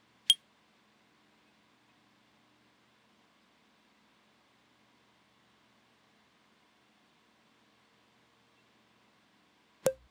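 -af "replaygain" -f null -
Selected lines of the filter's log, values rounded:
track_gain = +49.9 dB
track_peak = 0.337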